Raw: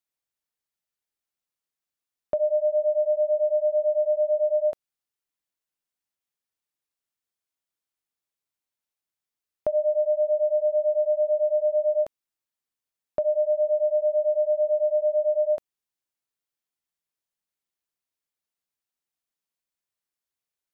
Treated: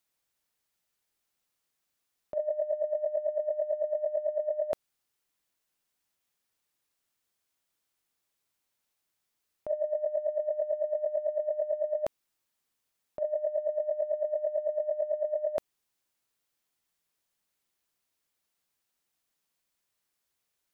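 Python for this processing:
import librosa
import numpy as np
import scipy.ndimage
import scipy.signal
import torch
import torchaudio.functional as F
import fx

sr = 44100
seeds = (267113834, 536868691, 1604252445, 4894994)

y = fx.over_compress(x, sr, threshold_db=-29.0, ratio=-0.5)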